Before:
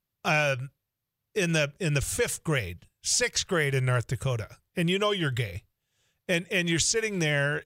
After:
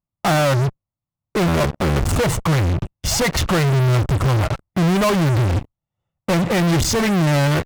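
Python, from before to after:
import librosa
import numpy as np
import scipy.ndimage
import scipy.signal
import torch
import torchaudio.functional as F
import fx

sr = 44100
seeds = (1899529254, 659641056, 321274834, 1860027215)

p1 = fx.cycle_switch(x, sr, every=2, mode='muted', at=(1.46, 2.06), fade=0.02)
p2 = scipy.signal.savgol_filter(p1, 65, 4, mode='constant')
p3 = fx.peak_eq(p2, sr, hz=440.0, db=-14.5, octaves=0.36)
p4 = fx.fuzz(p3, sr, gain_db=58.0, gate_db=-59.0)
y = p3 + (p4 * librosa.db_to_amplitude(-4.0))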